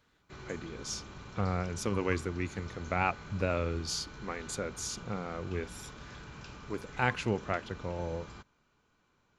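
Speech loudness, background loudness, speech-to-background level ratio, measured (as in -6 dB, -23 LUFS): -35.5 LUFS, -48.0 LUFS, 12.5 dB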